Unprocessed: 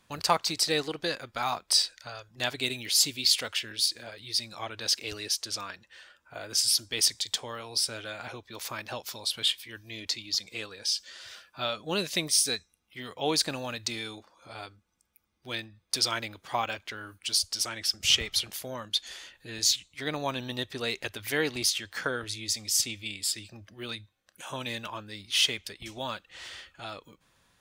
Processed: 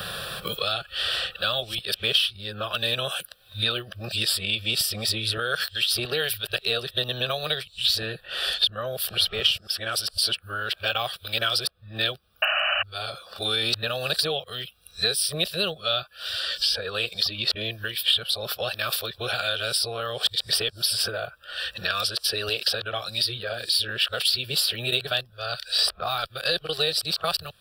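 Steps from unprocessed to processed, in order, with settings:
played backwards from end to start
sound drawn into the spectrogram noise, 0:12.42–0:12.83, 560–3,000 Hz −27 dBFS
phaser with its sweep stopped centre 1,400 Hz, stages 8
multiband upward and downward compressor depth 100%
level +7.5 dB

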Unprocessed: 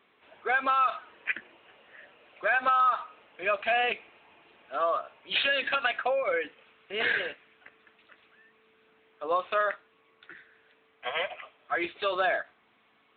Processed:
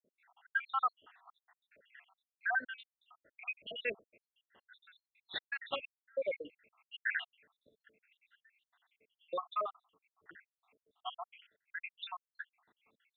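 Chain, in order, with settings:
time-frequency cells dropped at random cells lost 84%
0:11.40–0:11.82: output level in coarse steps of 12 dB
level −4 dB

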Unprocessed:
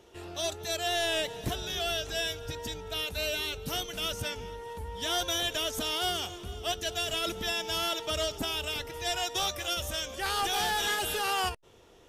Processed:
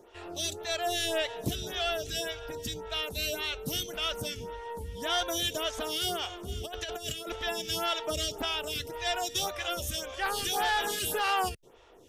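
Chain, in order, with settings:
0:06.48–0:07.36: compressor whose output falls as the input rises −35 dBFS, ratio −0.5
phaser with staggered stages 1.8 Hz
level +3.5 dB

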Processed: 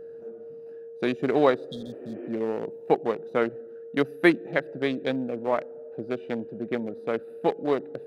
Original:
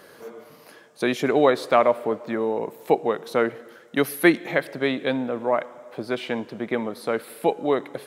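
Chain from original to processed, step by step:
adaptive Wiener filter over 41 samples
steady tone 460 Hz −37 dBFS
healed spectral selection 0:01.72–0:02.26, 250–3,200 Hz both
level −2 dB

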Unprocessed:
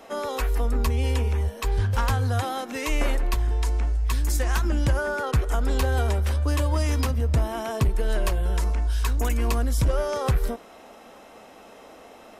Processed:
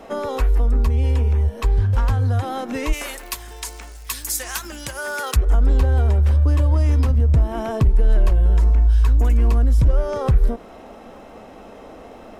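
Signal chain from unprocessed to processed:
downward compressor 3 to 1, threshold −28 dBFS, peak gain reduction 8.5 dB
surface crackle 180 per second −48 dBFS
spectral tilt −2 dB per octave, from 0:02.92 +3.5 dB per octave, from 0:05.35 −2.5 dB per octave
level +4.5 dB

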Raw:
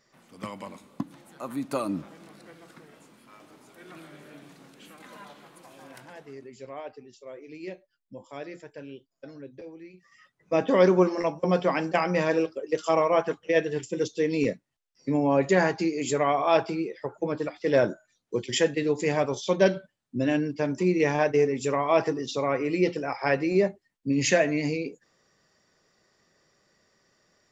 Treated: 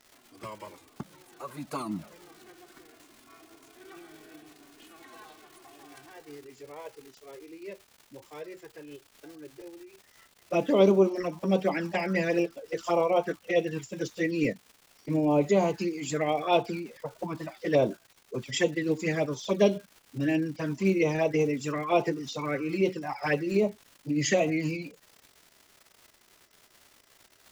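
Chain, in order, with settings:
flanger swept by the level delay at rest 3.2 ms, full sweep at −18.5 dBFS
surface crackle 230 per second −40 dBFS
phase-vocoder pitch shift with formants kept +1 semitone

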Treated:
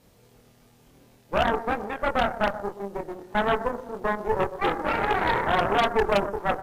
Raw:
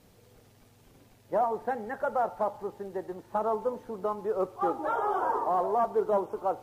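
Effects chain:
double-tracking delay 25 ms −3 dB
delay that swaps between a low-pass and a high-pass 121 ms, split 1,000 Hz, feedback 50%, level −11 dB
harmonic generator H 4 −7 dB, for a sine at −15.5 dBFS

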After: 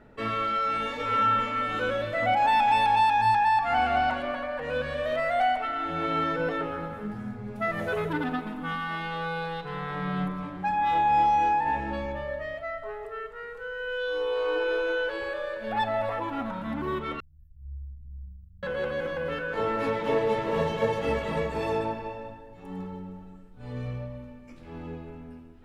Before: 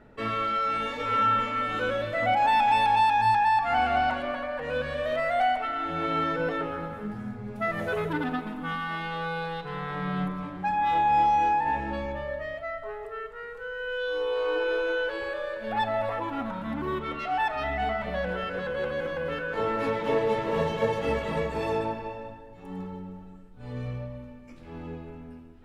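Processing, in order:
0:17.20–0:18.63: inverse Chebyshev band-stop filter 420–6,600 Hz, stop band 70 dB

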